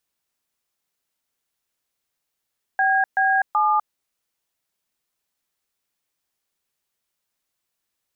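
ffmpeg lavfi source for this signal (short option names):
-f lavfi -i "aevalsrc='0.119*clip(min(mod(t,0.379),0.25-mod(t,0.379))/0.002,0,1)*(eq(floor(t/0.379),0)*(sin(2*PI*770*mod(t,0.379))+sin(2*PI*1633*mod(t,0.379)))+eq(floor(t/0.379),1)*(sin(2*PI*770*mod(t,0.379))+sin(2*PI*1633*mod(t,0.379)))+eq(floor(t/0.379),2)*(sin(2*PI*852*mod(t,0.379))+sin(2*PI*1209*mod(t,0.379))))':d=1.137:s=44100"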